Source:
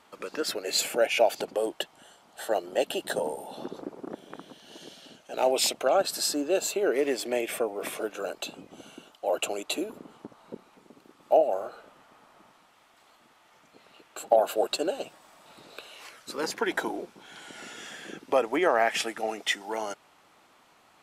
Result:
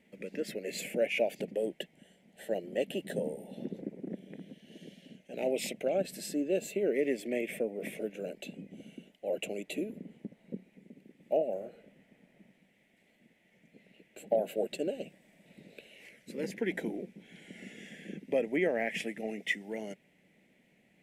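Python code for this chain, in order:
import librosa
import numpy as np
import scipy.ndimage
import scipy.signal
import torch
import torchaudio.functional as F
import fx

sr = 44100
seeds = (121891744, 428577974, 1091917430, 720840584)

y = fx.curve_eq(x, sr, hz=(110.0, 190.0, 310.0, 560.0, 1200.0, 2000.0, 4400.0, 9500.0), db=(0, 12, 0, -1, -29, 3, -14, -8))
y = F.gain(torch.from_numpy(y), -3.5).numpy()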